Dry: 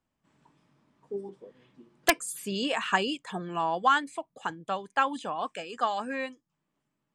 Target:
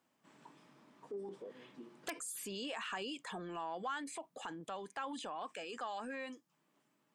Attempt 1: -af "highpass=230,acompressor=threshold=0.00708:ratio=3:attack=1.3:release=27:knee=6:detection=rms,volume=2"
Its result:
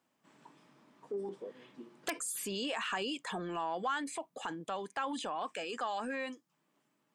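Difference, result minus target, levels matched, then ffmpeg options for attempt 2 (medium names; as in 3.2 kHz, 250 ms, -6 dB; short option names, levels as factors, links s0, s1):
compression: peak gain reduction -5.5 dB
-af "highpass=230,acompressor=threshold=0.00266:ratio=3:attack=1.3:release=27:knee=6:detection=rms,volume=2"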